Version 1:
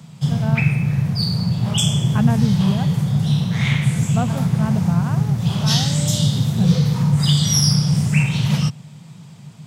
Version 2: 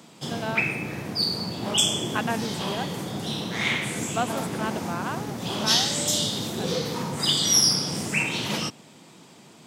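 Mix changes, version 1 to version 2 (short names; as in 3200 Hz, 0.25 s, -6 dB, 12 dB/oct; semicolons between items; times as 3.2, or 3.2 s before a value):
speech: add tilt +4.5 dB/oct; master: add resonant low shelf 210 Hz -13 dB, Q 3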